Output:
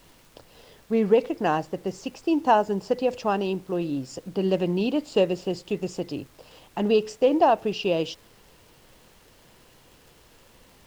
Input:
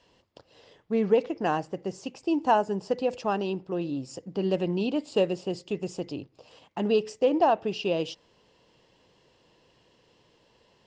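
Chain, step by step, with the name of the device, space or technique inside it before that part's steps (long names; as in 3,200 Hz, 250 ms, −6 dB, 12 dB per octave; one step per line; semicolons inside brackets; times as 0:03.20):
vinyl LP (surface crackle; pink noise bed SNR 30 dB)
level +3 dB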